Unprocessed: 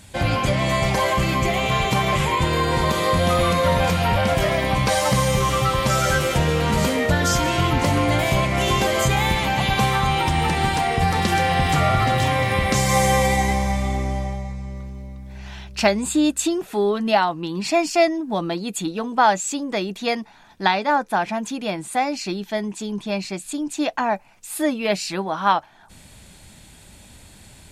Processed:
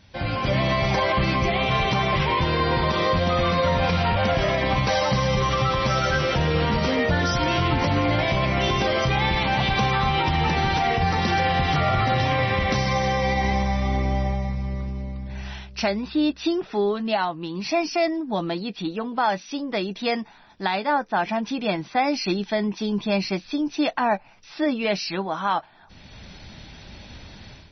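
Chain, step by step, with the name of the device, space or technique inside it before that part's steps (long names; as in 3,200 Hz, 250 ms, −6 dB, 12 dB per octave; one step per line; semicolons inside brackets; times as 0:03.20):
low-bitrate web radio (automatic gain control gain up to 11.5 dB; brickwall limiter −6 dBFS, peak gain reduction 5 dB; level −6.5 dB; MP3 24 kbit/s 24,000 Hz)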